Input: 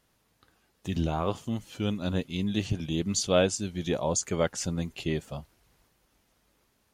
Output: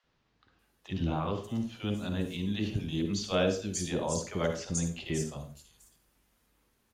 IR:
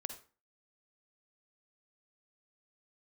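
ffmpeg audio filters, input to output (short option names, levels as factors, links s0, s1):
-filter_complex "[0:a]acrossover=split=600|5500[s0][s1][s2];[s0]adelay=40[s3];[s2]adelay=590[s4];[s3][s1][s4]amix=inputs=3:normalize=0[s5];[1:a]atrim=start_sample=2205[s6];[s5][s6]afir=irnorm=-1:irlink=0"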